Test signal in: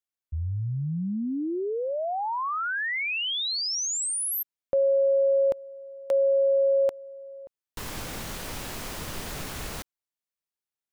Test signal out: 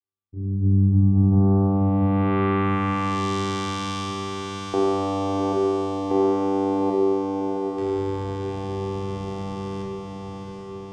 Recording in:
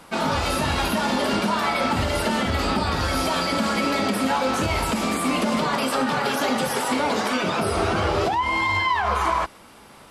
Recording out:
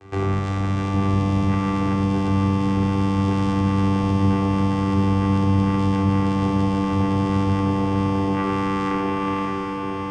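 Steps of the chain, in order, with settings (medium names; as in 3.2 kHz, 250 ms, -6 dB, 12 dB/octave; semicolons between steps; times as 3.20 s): hum notches 50/100/150/200/250 Hz; compression, threshold -25 dBFS; vocoder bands 4, saw 97.5 Hz; feedback comb 130 Hz, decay 0.57 s, harmonics odd, mix 70%; on a send: echo that smears into a reverb 750 ms, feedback 63%, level -4 dB; on the sum: simulated room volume 2300 m³, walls furnished, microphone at 3.7 m; trim +9 dB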